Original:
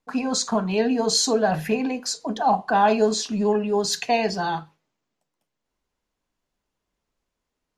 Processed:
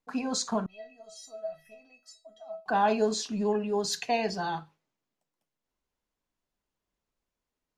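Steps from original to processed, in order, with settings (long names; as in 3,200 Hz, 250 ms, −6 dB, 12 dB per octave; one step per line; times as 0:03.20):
0:00.66–0:02.66: tuned comb filter 650 Hz, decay 0.24 s, harmonics all, mix 100%
level −6.5 dB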